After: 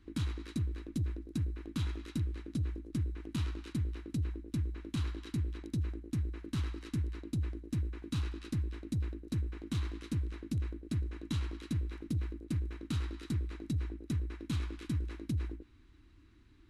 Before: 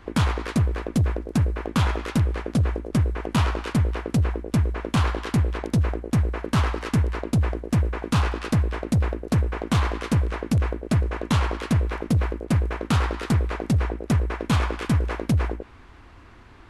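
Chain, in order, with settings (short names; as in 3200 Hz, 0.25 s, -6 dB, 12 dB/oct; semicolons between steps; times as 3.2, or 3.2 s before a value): passive tone stack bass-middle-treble 6-0-2; small resonant body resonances 310/3900 Hz, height 14 dB, ringing for 40 ms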